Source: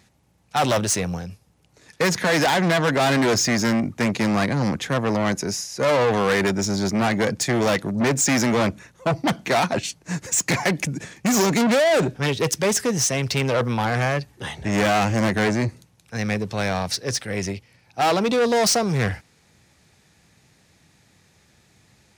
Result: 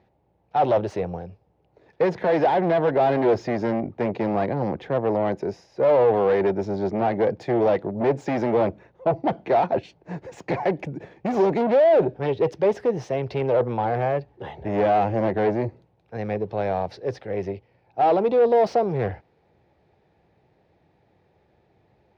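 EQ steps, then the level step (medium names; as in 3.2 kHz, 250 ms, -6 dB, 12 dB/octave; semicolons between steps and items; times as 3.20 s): distance through air 330 m; bass shelf 210 Hz +3.5 dB; high-order bell 550 Hz +11 dB; -8.0 dB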